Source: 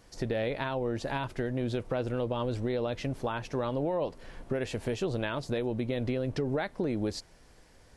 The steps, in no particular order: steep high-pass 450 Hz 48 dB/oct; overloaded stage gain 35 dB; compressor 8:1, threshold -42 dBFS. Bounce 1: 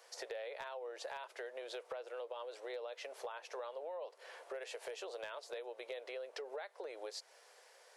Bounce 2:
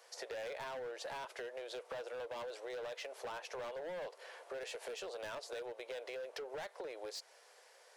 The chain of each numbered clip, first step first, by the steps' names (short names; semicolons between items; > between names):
steep high-pass > compressor > overloaded stage; steep high-pass > overloaded stage > compressor